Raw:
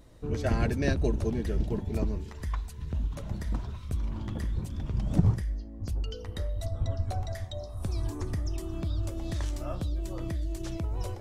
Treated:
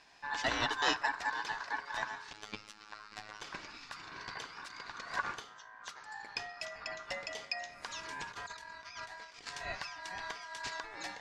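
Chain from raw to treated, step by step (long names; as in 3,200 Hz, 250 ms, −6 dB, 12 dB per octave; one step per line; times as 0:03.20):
meter weighting curve D
0:05.99–0:06.26: healed spectral selection 1,100–5,600 Hz
high-pass filter 49 Hz
three-way crossover with the lows and the highs turned down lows −12 dB, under 240 Hz, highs −19 dB, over 5,700 Hz
notch filter 1,900 Hz, Q 7.9
0:08.32–0:09.47: compressor whose output falls as the input rises −45 dBFS, ratio −0.5
ring modulation 1,300 Hz
0:02.33–0:03.42: phases set to zero 106 Hz
convolution reverb RT60 0.75 s, pre-delay 7 ms, DRR 18 dB
level +1 dB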